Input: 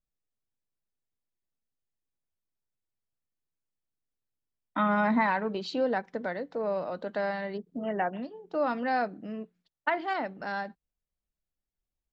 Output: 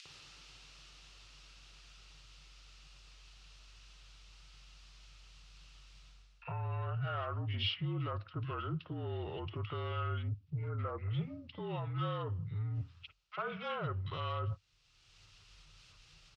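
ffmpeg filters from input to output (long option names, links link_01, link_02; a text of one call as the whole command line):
ffmpeg -i in.wav -filter_complex "[0:a]asubboost=boost=5.5:cutoff=180,asplit=2[link_01][link_02];[link_02]acompressor=mode=upward:threshold=-26dB:ratio=2.5,volume=-2dB[link_03];[link_01][link_03]amix=inputs=2:normalize=0,alimiter=limit=-17.5dB:level=0:latency=1:release=127,areverse,acompressor=threshold=-41dB:ratio=6,areverse,crystalizer=i=4.5:c=0,asoftclip=type=tanh:threshold=-33dB,acrossover=split=2400[link_04][link_05];[link_04]adelay=40[link_06];[link_06][link_05]amix=inputs=2:normalize=0,afreqshift=-64,asetrate=32667,aresample=44100,highpass=100,equalizer=frequency=100:width_type=q:width=4:gain=8,equalizer=frequency=150:width_type=q:width=4:gain=9,equalizer=frequency=220:width_type=q:width=4:gain=-7,equalizer=frequency=1300:width_type=q:width=4:gain=8,equalizer=frequency=2700:width_type=q:width=4:gain=7,lowpass=frequency=4900:width=0.5412,lowpass=frequency=4900:width=1.3066,volume=1.5dB" out.wav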